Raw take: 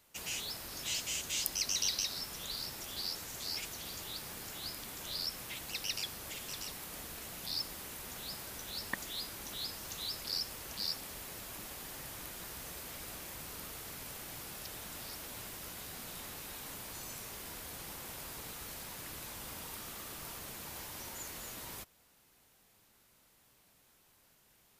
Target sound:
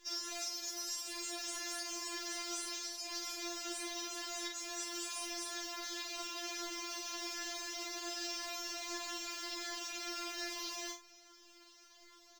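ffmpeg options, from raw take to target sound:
-filter_complex "[0:a]highshelf=f=3.8k:t=q:w=3:g=-10,acompressor=threshold=-46dB:ratio=6,asplit=2[a][b];[b]aecho=0:1:81|162|243|324:0.596|0.185|0.0572|0.0177[c];[a][c]amix=inputs=2:normalize=0,asetrate=88200,aresample=44100,afftfilt=real='re*4*eq(mod(b,16),0)':imag='im*4*eq(mod(b,16),0)':win_size=2048:overlap=0.75,volume=9dB"

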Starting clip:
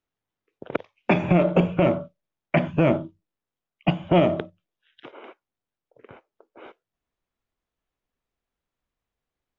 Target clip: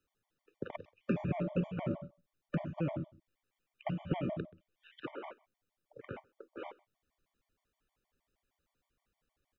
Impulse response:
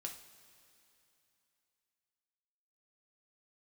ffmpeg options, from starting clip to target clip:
-filter_complex "[0:a]asettb=1/sr,asplit=3[a][b][c];[a]atrim=end=2.964[d];[b]atrim=start=2.96:end=5.16,asetpts=PTS-STARTPTS,afade=t=in:d=0.004:c=qsin,afade=t=out:st=2.196:d=0.004:c=qsin,equalizer=f=2.3k:t=o:w=1.1:g=5.5[e];[c]atrim=start=5.156[f];[d][e]acrossfade=d=0.004:c1=hsin:c2=qsin[g];[g][f]acrossfade=d=0.004:c1=qsin:c2=hsin,alimiter=limit=-12.5dB:level=0:latency=1:release=25,asplit=2[h][i];[i]adelay=128.3,volume=-28dB,highshelf=f=4k:g=-2.89[j];[h][j]amix=inputs=2:normalize=0,acrossover=split=270|1500[k][l][m];[k]acompressor=threshold=-38dB:ratio=4[n];[l]acompressor=threshold=-44dB:ratio=4[o];[m]acompressor=threshold=-58dB:ratio=4[p];[n][o][p]amix=inputs=3:normalize=0,afftfilt=real='re*gt(sin(2*PI*6.4*pts/sr)*(1-2*mod(floor(b*sr/1024/600),2)),0)':imag='im*gt(sin(2*PI*6.4*pts/sr)*(1-2*mod(floor(b*sr/1024/600),2)),0)':win_size=1024:overlap=0.75,volume=5dB"

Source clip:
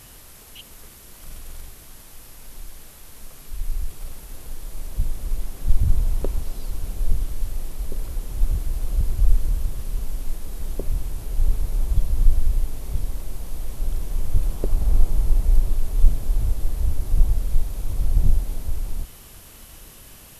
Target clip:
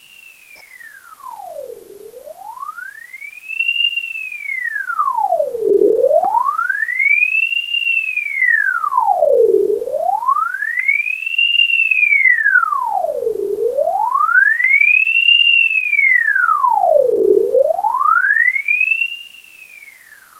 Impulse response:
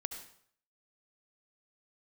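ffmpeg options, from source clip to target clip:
-filter_complex "[0:a]volume=14dB,asoftclip=hard,volume=-14dB,asplit=2[a][b];[1:a]atrim=start_sample=2205,lowshelf=f=430:g=10.5[c];[b][c]afir=irnorm=-1:irlink=0,volume=3dB[d];[a][d]amix=inputs=2:normalize=0,aeval=exprs='val(0)*sin(2*PI*1600*n/s+1600*0.75/0.26*sin(2*PI*0.26*n/s))':c=same,volume=-7dB"

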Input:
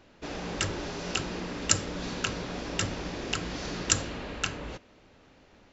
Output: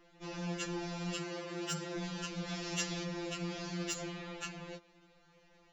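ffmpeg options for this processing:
-filter_complex "[0:a]asettb=1/sr,asplit=3[a][b][c];[a]atrim=end=1.184[d];[b]atrim=start=1.18:end=1.98,asetpts=PTS-STARTPTS,afade=t=in:d=0.004:c=qsin,afade=t=out:st=0.796:d=0.004:c=qsin,afreqshift=61[e];[c]atrim=start=1.976[f];[d][e]acrossfade=d=0.004:c1=hsin:c2=qsin[g];[g][f]acrossfade=d=0.004:c1=qsin:c2=hsin,asoftclip=type=tanh:threshold=-11dB,alimiter=limit=-19dB:level=0:latency=1:release=122,asettb=1/sr,asplit=3[h][i][j];[h]atrim=end=2.484[k];[i]atrim=start=2.48:end=3.04,asetpts=PTS-STARTPTS,afade=t=in:d=0.004:c=qsin,afade=t=out:st=0.556:d=0.004:c=qsin,highshelf=f=2.2k:g=9[l];[j]atrim=start=3.036[m];[k][l]acrossfade=d=0.004:c1=hsin:c2=qsin[n];[n][m]acrossfade=d=0.004:c1=qsin:c2=hsin,afftfilt=real='re*2.83*eq(mod(b,8),0)':imag='im*2.83*eq(mod(b,8),0)':win_size=2048:overlap=0.75,volume=-3.5dB"

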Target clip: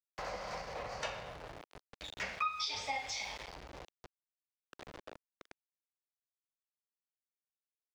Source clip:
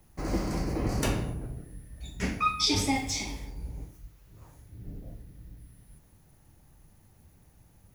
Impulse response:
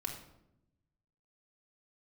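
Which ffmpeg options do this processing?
-filter_complex "[0:a]lowpass=f=7.9k:w=0.5412,lowpass=f=7.9k:w=1.3066,asettb=1/sr,asplit=3[a][b][c];[a]atrim=end=4.874[d];[b]atrim=start=4.87:end=5.35,asetpts=PTS-STARTPTS,afade=t=in:d=0.004:c=qsin,afade=t=out:st=0.476:d=0.004:c=qsin,agate=range=-33dB:threshold=-38dB:ratio=3:detection=peak[e];[c]atrim=start=5.346[f];[d][e]acrossfade=d=0.004:c1=hsin:c2=qsin[g];[g][f]acrossfade=d=0.004:c1=qsin:c2=hsin,firequalizer=gain_entry='entry(120,0);entry(170,-1);entry(320,-19);entry(510,2)':delay=0.05:min_phase=1,aeval=exprs='val(0)*gte(abs(val(0)),0.0112)':c=same,acompressor=threshold=-37dB:ratio=6,acrossover=split=360 5600:gain=0.126 1 0.112[h][i][j];[h][i][j]amix=inputs=3:normalize=0,volume=4dB"

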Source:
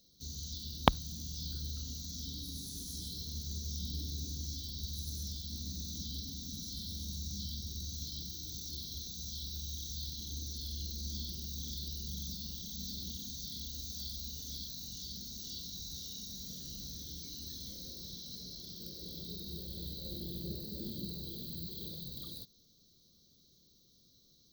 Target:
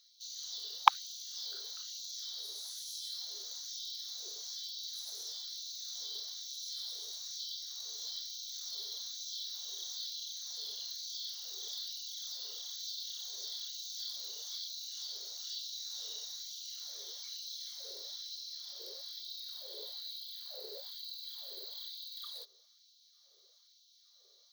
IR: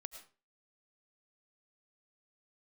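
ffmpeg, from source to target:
-filter_complex "[0:a]asplit=2[a][b];[b]highpass=f=720:p=1,volume=10dB,asoftclip=type=tanh:threshold=-2dB[c];[a][c]amix=inputs=2:normalize=0,lowpass=f=1.7k:p=1,volume=-6dB,afftfilt=real='re*gte(b*sr/1024,350*pow(2500/350,0.5+0.5*sin(2*PI*1.1*pts/sr)))':imag='im*gte(b*sr/1024,350*pow(2500/350,0.5+0.5*sin(2*PI*1.1*pts/sr)))':win_size=1024:overlap=0.75,volume=6dB"

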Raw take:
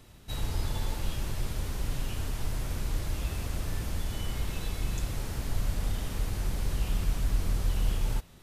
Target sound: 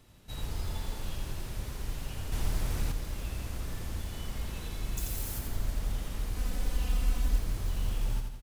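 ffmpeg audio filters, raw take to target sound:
-filter_complex "[0:a]acrusher=bits=7:mode=log:mix=0:aa=0.000001,asettb=1/sr,asplit=3[a][b][c];[a]atrim=end=4.974[d];[b]atrim=start=4.97:end=5.39,asetpts=PTS-STARTPTS,afade=t=in:d=0.004:c=qsin,afade=t=out:st=0.416:d=0.004:c=qsin,aemphasis=mode=production:type=50fm[e];[c]atrim=start=5.386[f];[d][e]acrossfade=d=0.004:c1=hsin:c2=qsin[g];[g][f]acrossfade=d=0.004:c1=qsin:c2=hsin,asplit=2[h][i];[i]aecho=0:1:86|172|258|344|430|516:0.562|0.27|0.13|0.0622|0.0299|0.0143[j];[h][j]amix=inputs=2:normalize=0,asettb=1/sr,asplit=3[k][l][m];[k]atrim=end=2.324[n];[l]atrim=start=2.32:end=2.92,asetpts=PTS-STARTPTS,afade=t=in:d=0.004:c=qsin,afade=t=out:st=0.596:d=0.004:c=qsin,acontrast=28[o];[m]atrim=start=2.916[p];[n][o]acrossfade=d=0.004:c1=hsin:c2=qsin[q];[q][p]acrossfade=d=0.004:c1=qsin:c2=hsin,asettb=1/sr,asplit=3[r][s][t];[r]atrim=end=6.364[u];[s]atrim=start=6.36:end=7.39,asetpts=PTS-STARTPTS,afade=t=in:d=0.004:c=qsin,afade=t=out:st=1.026:d=0.004:c=qsin,aecho=1:1:4:0.84,atrim=end_sample=45423[v];[t]atrim=start=7.386[w];[u][v]acrossfade=d=0.004:c1=hsin:c2=qsin[x];[x][w]acrossfade=d=0.004:c1=qsin:c2=hsin,volume=-5.5dB"

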